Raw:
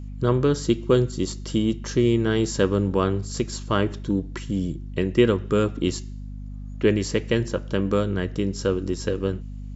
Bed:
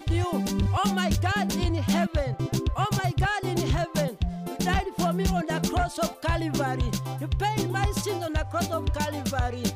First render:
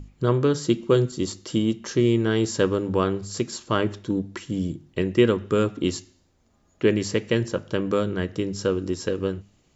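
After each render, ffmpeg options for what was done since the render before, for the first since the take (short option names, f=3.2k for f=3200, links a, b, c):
-af "bandreject=f=50:t=h:w=6,bandreject=f=100:t=h:w=6,bandreject=f=150:t=h:w=6,bandreject=f=200:t=h:w=6,bandreject=f=250:t=h:w=6"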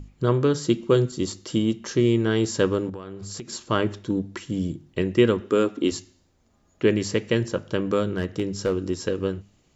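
-filter_complex "[0:a]asettb=1/sr,asplit=3[a][b][c];[a]atrim=end=2.894[d];[b]atrim=start=2.89:end=3.5,asetpts=PTS-STARTPTS,afade=t=in:d=0.004:c=qsin,afade=t=out:st=0.606:d=0.004:c=qsin,acompressor=threshold=-31dB:ratio=16:attack=3.2:release=140:knee=1:detection=peak[e];[c]atrim=start=3.496[f];[d][e]acrossfade=d=0.004:c1=hsin:c2=qsin[g];[g][f]acrossfade=d=0.004:c1=qsin:c2=hsin,asettb=1/sr,asplit=3[h][i][j];[h]atrim=end=5.404[k];[i]atrim=start=5.4:end=5.92,asetpts=PTS-STARTPTS,afade=t=in:d=0.004:c=qsin,afade=t=out:st=0.516:d=0.004:c=qsin,lowshelf=f=190:t=q:w=1.5:g=-10[l];[j]atrim=start=5.916[m];[k][l]acrossfade=d=0.004:c1=hsin:c2=qsin[n];[n][m]acrossfade=d=0.004:c1=qsin:c2=hsin,asettb=1/sr,asplit=3[o][p][q];[o]atrim=end=8.104[r];[p]atrim=start=8.1:end=8.78,asetpts=PTS-STARTPTS,afade=t=in:d=0.004:c=qsin,afade=t=out:st=0.676:d=0.004:c=qsin,asoftclip=type=hard:threshold=-16.5dB[s];[q]atrim=start=8.776[t];[r][s]acrossfade=d=0.004:c1=hsin:c2=qsin[u];[u][t]acrossfade=d=0.004:c1=qsin:c2=hsin"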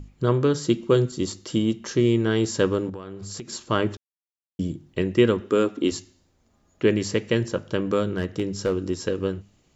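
-filter_complex "[0:a]asplit=3[a][b][c];[a]atrim=end=3.97,asetpts=PTS-STARTPTS,afade=t=out:st=3.966:d=0.004:c=hsin[d];[b]atrim=start=3.97:end=4.59,asetpts=PTS-STARTPTS,volume=0[e];[c]atrim=start=4.59,asetpts=PTS-STARTPTS,afade=t=in:d=0.004:c=hsin[f];[d][e][f]concat=n=3:v=0:a=1"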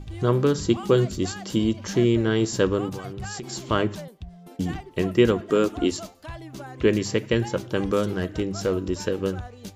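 -filter_complex "[1:a]volume=-12dB[a];[0:a][a]amix=inputs=2:normalize=0"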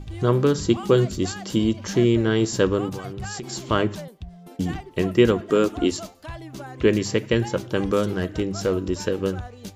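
-af "volume=1.5dB"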